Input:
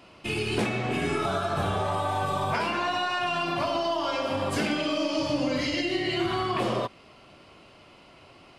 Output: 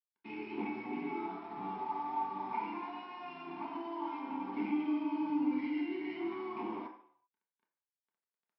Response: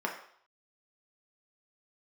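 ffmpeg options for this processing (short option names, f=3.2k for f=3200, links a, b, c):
-filter_complex "[0:a]asplit=3[a][b][c];[a]bandpass=f=300:t=q:w=8,volume=0dB[d];[b]bandpass=f=870:t=q:w=8,volume=-6dB[e];[c]bandpass=f=2.24k:t=q:w=8,volume=-9dB[f];[d][e][f]amix=inputs=3:normalize=0,aresample=11025,aeval=exprs='sgn(val(0))*max(abs(val(0))-0.00178,0)':c=same,aresample=44100[g];[1:a]atrim=start_sample=2205[h];[g][h]afir=irnorm=-1:irlink=0,volume=-5dB"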